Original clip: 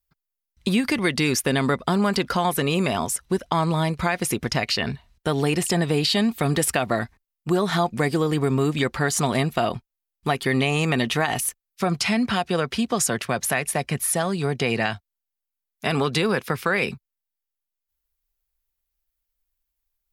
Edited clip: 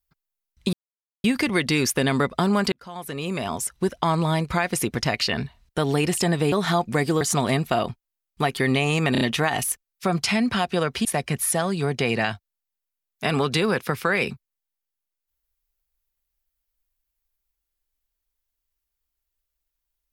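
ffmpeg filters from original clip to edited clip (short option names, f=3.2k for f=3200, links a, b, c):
-filter_complex "[0:a]asplit=9[a][b][c][d][e][f][g][h][i];[a]atrim=end=0.73,asetpts=PTS-STARTPTS,afade=t=out:st=0.726:d=0.004:c=hsin,apad=pad_dur=0.51[j];[b]atrim=start=0.73:end=2.21,asetpts=PTS-STARTPTS,afade=t=in:d=0.004:c=hsin,afade=t=out:st=1.476:d=0.004:c=hsin[k];[c]atrim=start=2.21:end=6.012,asetpts=PTS-STARTPTS,afade=t=in:d=1.16[l];[d]atrim=start=7.568:end=8.262[m];[e]atrim=start=9.068:end=11.012[n];[f]atrim=start=10.978:end=11.012[o];[g]atrim=start=10.978:end=11.012[p];[h]atrim=start=10.978:end=12.822[q];[i]atrim=start=13.658[r];[j][k][l]concat=n=3:v=0:a=1[s];[s][m]acrossfade=d=0.004:c1=hsin:c2=hsin[t];[t][n]acrossfade=d=0.004:c1=hsin:c2=hsin[u];[u][o]acrossfade=d=0.004:c1=hsin:c2=hsin[v];[v][p]acrossfade=d=0.004:c1=hsin:c2=hsin[w];[w][q]acrossfade=d=0.004:c1=hsin:c2=hsin[x];[x][r]acrossfade=d=0.004:c1=hsin:c2=hsin"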